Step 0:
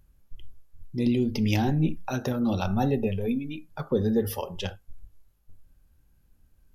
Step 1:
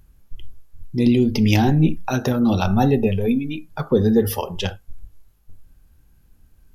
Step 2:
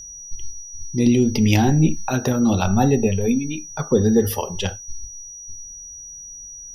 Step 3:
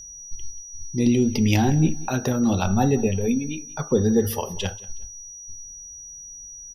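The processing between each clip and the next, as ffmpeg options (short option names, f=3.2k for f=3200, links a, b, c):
-af "bandreject=f=560:w=14,volume=8dB"
-af "aeval=exprs='val(0)+0.0178*sin(2*PI*5800*n/s)':c=same"
-af "aecho=1:1:184|368:0.0891|0.0232,volume=-3dB"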